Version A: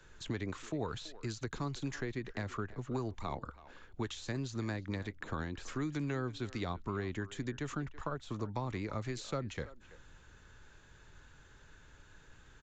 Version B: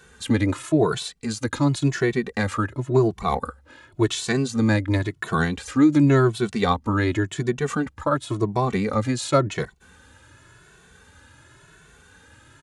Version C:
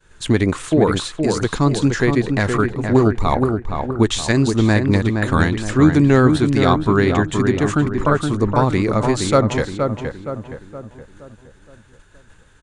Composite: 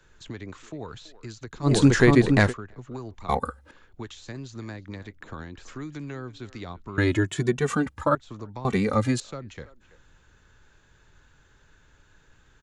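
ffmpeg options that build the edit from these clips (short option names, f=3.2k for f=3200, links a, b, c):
-filter_complex "[1:a]asplit=3[a][b][c];[0:a]asplit=5[d][e][f][g][h];[d]atrim=end=1.72[i];[2:a]atrim=start=1.62:end=2.54[j];[e]atrim=start=2.44:end=3.292[k];[a]atrim=start=3.288:end=3.712[l];[f]atrim=start=3.708:end=6.982[m];[b]atrim=start=6.978:end=8.152[n];[g]atrim=start=8.148:end=8.652[o];[c]atrim=start=8.648:end=9.202[p];[h]atrim=start=9.198[q];[i][j]acrossfade=d=0.1:c1=tri:c2=tri[r];[r][k]acrossfade=d=0.1:c1=tri:c2=tri[s];[s][l]acrossfade=d=0.004:c1=hsin:c2=hsin[t];[t][m]acrossfade=d=0.004:c1=hsin:c2=hsin[u];[u][n]acrossfade=d=0.004:c1=hsin:c2=hsin[v];[v][o]acrossfade=d=0.004:c1=hsin:c2=hsin[w];[w][p]acrossfade=d=0.004:c1=hsin:c2=hsin[x];[x][q]acrossfade=d=0.004:c1=hsin:c2=hsin"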